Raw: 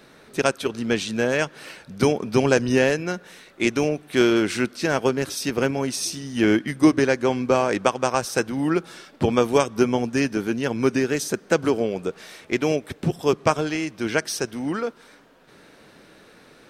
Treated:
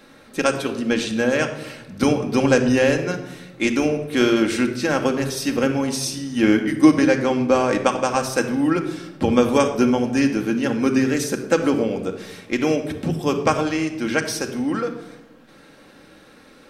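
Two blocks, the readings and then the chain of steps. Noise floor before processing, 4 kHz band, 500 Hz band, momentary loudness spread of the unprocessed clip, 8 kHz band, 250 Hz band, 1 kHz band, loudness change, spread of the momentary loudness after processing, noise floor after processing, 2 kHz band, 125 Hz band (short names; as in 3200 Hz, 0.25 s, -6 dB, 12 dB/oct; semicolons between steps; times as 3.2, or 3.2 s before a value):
-51 dBFS, +1.5 dB, +1.0 dB, 9 LU, +1.0 dB, +4.0 dB, +2.0 dB, +2.5 dB, 9 LU, -48 dBFS, +1.5 dB, +1.0 dB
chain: shoebox room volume 3600 m³, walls furnished, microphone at 2.2 m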